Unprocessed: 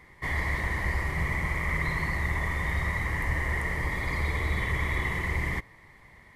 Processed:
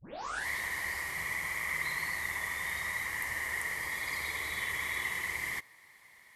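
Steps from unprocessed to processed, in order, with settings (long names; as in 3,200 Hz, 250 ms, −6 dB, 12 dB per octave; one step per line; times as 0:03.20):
turntable start at the beginning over 0.48 s
spectral tilt +4.5 dB per octave
level −7 dB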